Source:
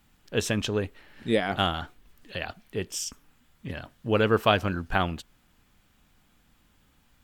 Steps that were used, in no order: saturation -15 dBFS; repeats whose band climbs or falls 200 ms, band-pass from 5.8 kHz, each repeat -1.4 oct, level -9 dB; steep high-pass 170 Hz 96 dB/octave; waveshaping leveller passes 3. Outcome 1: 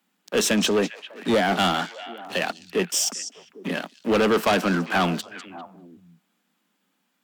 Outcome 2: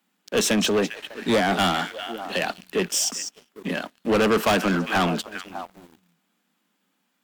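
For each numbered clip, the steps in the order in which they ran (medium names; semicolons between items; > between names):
waveshaping leveller > steep high-pass > saturation > repeats whose band climbs or falls; steep high-pass > saturation > repeats whose band climbs or falls > waveshaping leveller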